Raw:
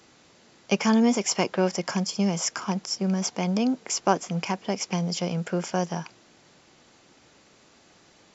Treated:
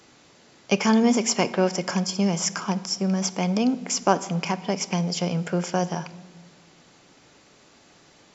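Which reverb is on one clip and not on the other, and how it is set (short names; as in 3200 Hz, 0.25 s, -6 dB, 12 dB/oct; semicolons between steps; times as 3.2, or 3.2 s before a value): shoebox room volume 1000 m³, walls mixed, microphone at 0.32 m; gain +2 dB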